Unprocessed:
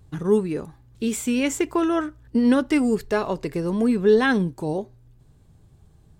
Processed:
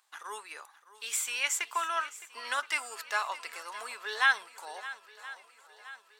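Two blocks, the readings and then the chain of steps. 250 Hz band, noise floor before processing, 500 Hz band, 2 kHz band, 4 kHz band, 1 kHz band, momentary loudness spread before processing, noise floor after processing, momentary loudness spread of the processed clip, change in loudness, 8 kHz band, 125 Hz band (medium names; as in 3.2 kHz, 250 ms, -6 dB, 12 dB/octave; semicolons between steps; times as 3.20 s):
under -40 dB, -55 dBFS, -24.0 dB, 0.0 dB, 0.0 dB, -3.0 dB, 11 LU, -62 dBFS, 19 LU, -10.0 dB, 0.0 dB, under -40 dB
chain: high-pass 980 Hz 24 dB/octave; on a send: shuffle delay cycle 1022 ms, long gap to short 1.5:1, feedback 49%, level -16.5 dB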